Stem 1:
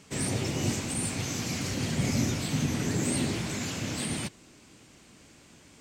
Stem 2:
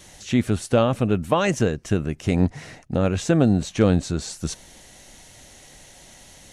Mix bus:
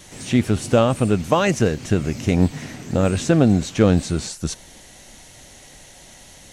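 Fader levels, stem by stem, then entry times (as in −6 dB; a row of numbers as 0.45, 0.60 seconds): −6.5, +2.5 decibels; 0.00, 0.00 seconds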